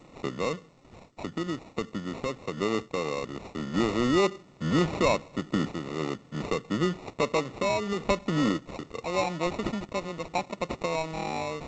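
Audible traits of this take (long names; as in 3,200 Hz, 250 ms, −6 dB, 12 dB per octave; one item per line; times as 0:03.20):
sample-and-hold tremolo
aliases and images of a low sample rate 1,600 Hz, jitter 0%
G.722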